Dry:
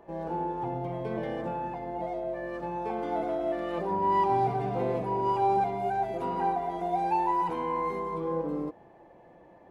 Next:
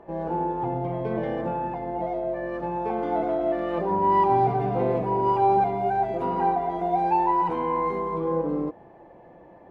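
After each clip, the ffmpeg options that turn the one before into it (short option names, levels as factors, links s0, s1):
-af "lowpass=f=2100:p=1,volume=1.88"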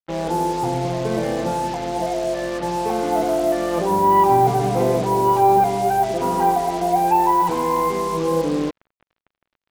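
-af "acrusher=bits=5:mix=0:aa=0.5,volume=1.88"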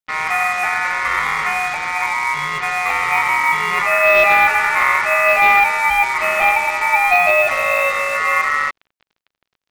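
-af "asoftclip=type=hard:threshold=0.316,aeval=exprs='val(0)*sin(2*PI*1600*n/s)':c=same,volume=2"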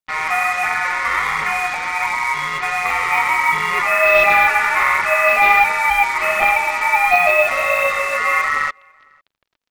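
-filter_complex "[0:a]aphaser=in_gain=1:out_gain=1:delay=4.4:decay=0.35:speed=1.4:type=triangular,asplit=2[s0][s1];[s1]adelay=501.5,volume=0.0316,highshelf=f=4000:g=-11.3[s2];[s0][s2]amix=inputs=2:normalize=0,volume=0.891"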